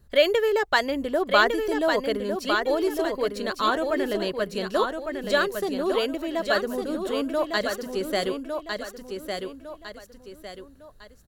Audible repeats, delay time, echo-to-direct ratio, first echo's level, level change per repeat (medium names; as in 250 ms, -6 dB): 3, 1155 ms, -5.0 dB, -5.5 dB, -8.5 dB